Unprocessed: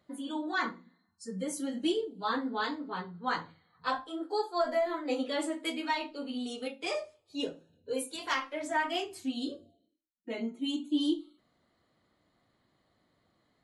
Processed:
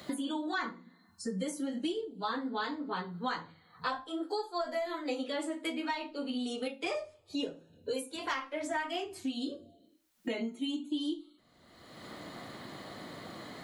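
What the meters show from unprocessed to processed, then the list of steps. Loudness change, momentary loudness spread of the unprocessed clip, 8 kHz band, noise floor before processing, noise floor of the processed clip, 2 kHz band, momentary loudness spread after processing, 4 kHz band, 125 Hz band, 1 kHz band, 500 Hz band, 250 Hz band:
-3.0 dB, 8 LU, -2.5 dB, -74 dBFS, -65 dBFS, -2.5 dB, 11 LU, -2.0 dB, +2.5 dB, -3.0 dB, -2.5 dB, -1.5 dB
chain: three bands compressed up and down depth 100%; trim -2.5 dB

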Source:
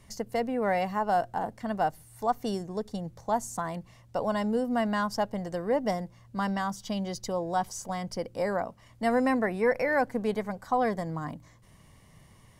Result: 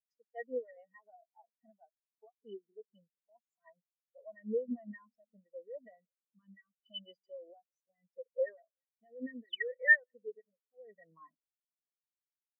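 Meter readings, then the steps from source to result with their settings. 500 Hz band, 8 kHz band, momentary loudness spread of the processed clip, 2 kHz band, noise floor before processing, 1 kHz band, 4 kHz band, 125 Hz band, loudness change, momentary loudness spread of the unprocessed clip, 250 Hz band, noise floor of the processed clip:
-13.0 dB, under -35 dB, 25 LU, +1.0 dB, -57 dBFS, -32.0 dB, -6.0 dB, under -25 dB, -4.5 dB, 9 LU, -18.0 dB, under -85 dBFS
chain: in parallel at -2 dB: compression, threshold -37 dBFS, peak gain reduction 15.5 dB; on the sum: painted sound fall, 9.44–9.70 s, 1.1–5.4 kHz -26 dBFS; frequency weighting A; peak limiter -25 dBFS, peak gain reduction 13 dB; dynamic bell 780 Hz, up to -7 dB, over -50 dBFS, Q 6.6; rotary cabinet horn 7 Hz, later 0.75 Hz, at 3.71 s; small resonant body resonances 1.9/3 kHz, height 13 dB, ringing for 40 ms; on a send: filtered feedback delay 187 ms, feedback 70%, low-pass 990 Hz, level -14 dB; on the sum: spectral contrast expander 4:1; trim +5 dB

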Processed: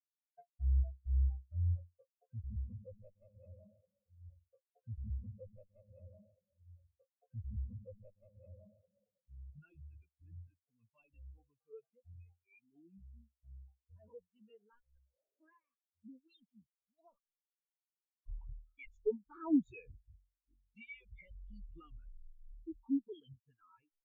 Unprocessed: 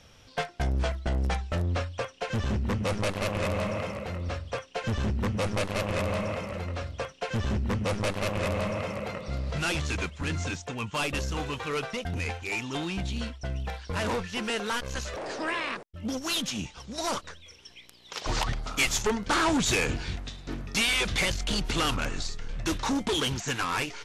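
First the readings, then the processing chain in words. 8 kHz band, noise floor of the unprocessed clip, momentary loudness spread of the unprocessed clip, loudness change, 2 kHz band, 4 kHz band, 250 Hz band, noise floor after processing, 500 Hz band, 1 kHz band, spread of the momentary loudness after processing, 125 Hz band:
under -40 dB, -53 dBFS, 10 LU, -10.0 dB, -31.5 dB, under -40 dB, -11.0 dB, under -85 dBFS, -18.0 dB, -30.0 dB, 24 LU, -11.5 dB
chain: spectral contrast expander 4:1; trim -2.5 dB

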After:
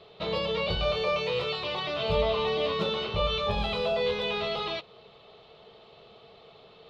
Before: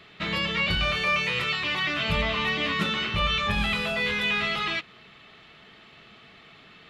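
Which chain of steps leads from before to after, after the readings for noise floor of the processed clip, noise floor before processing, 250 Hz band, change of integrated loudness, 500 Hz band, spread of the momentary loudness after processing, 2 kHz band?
-54 dBFS, -52 dBFS, -5.5 dB, -3.5 dB, +7.0 dB, 4 LU, -10.5 dB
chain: FFT filter 120 Hz 0 dB, 300 Hz -6 dB, 450 Hz +12 dB, 1 kHz +3 dB, 1.8 kHz -13 dB, 4 kHz +2 dB, 8.8 kHz -15 dB; trim -2.5 dB

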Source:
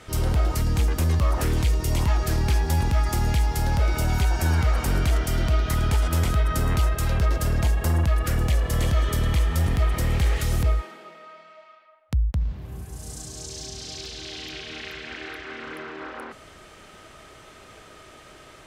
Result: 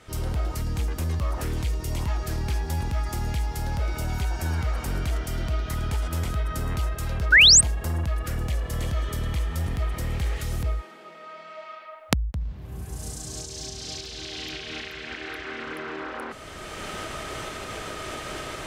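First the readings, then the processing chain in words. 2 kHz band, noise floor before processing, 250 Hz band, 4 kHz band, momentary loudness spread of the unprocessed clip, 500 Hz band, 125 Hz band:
+7.5 dB, -48 dBFS, -4.5 dB, +10.0 dB, 13 LU, -3.5 dB, -5.5 dB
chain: recorder AGC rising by 17 dB/s; painted sound rise, 7.32–7.61 s, 1.4–9.1 kHz -7 dBFS; trim -5.5 dB

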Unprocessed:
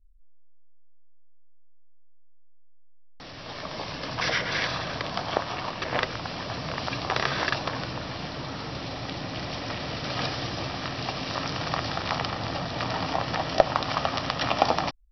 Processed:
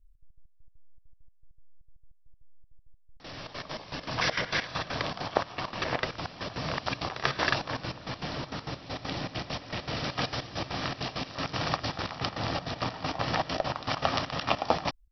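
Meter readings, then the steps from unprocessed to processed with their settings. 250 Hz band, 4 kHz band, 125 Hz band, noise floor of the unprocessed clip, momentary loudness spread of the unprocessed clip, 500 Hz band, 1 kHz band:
-2.5 dB, -3.0 dB, -2.5 dB, -45 dBFS, 10 LU, -4.0 dB, -3.5 dB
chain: trance gate "xx.x.x..x.x" 199 bpm -12 dB

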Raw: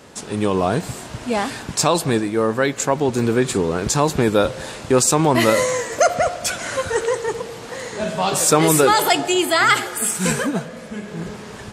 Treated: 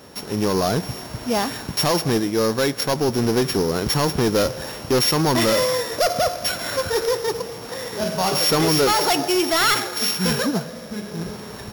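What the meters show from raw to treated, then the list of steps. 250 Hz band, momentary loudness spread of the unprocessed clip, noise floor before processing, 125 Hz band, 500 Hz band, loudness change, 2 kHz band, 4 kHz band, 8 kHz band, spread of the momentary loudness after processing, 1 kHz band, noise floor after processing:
-1.5 dB, 15 LU, -36 dBFS, -1.0 dB, -2.0 dB, -2.0 dB, -4.0 dB, +3.0 dB, -5.0 dB, 13 LU, -3.5 dB, -36 dBFS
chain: sorted samples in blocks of 8 samples; overload inside the chain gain 14.5 dB

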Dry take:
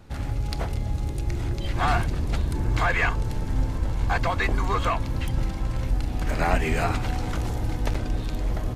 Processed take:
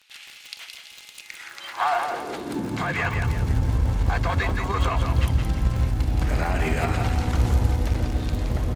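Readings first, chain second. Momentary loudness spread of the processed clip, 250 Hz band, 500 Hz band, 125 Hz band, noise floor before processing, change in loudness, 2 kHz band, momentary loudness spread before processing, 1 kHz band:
16 LU, +1.5 dB, +0.5 dB, +3.0 dB, -30 dBFS, +2.5 dB, -1.0 dB, 6 LU, +0.5 dB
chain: peak limiter -18 dBFS, peak gain reduction 9.5 dB; high-pass sweep 2.8 kHz -> 64 Hz, 1.16–3.34 s; Chebyshev shaper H 3 -20 dB, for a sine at -13 dBFS; crackle 33 per s -35 dBFS; on a send: feedback delay 170 ms, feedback 40%, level -6 dB; on the sum: trim +4 dB

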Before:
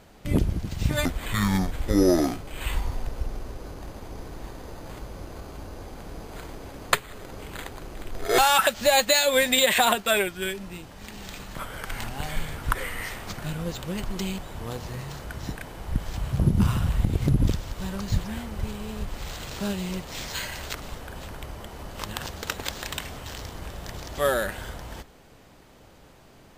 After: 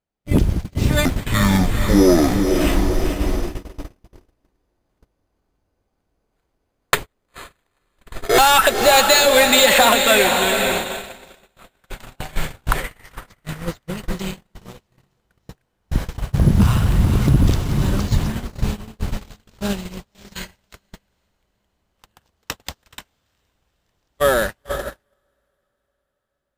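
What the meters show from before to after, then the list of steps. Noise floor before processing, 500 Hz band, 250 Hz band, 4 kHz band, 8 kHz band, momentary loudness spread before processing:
-52 dBFS, +7.5 dB, +7.5 dB, +7.5 dB, +7.0 dB, 21 LU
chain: in parallel at -11 dB: short-mantissa float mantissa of 2-bit; on the sum: echo that smears into a reverb 481 ms, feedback 60%, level -6 dB; gate -25 dBFS, range -42 dB; saturation -9 dBFS, distortion -20 dB; trim +5.5 dB

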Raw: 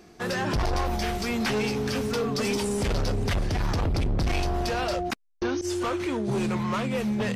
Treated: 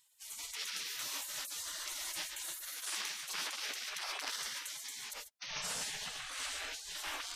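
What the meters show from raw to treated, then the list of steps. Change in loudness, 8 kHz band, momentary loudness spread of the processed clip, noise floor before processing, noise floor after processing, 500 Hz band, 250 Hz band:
-11.5 dB, 0.0 dB, 5 LU, -52 dBFS, -54 dBFS, -28.5 dB, -35.5 dB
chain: gated-style reverb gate 160 ms rising, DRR 1.5 dB; spectral gate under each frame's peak -30 dB weak; trim +1 dB

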